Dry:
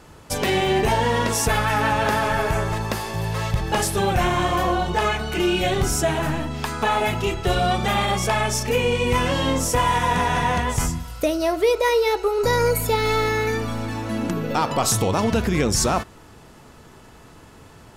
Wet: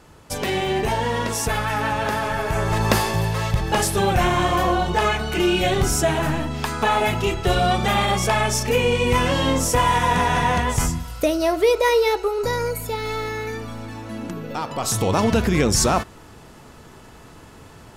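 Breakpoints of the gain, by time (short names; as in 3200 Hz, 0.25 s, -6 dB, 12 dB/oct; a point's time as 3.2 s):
2.45 s -2.5 dB
2.96 s +8.5 dB
3.36 s +1.5 dB
12.04 s +1.5 dB
12.73 s -6 dB
14.74 s -6 dB
15.14 s +2 dB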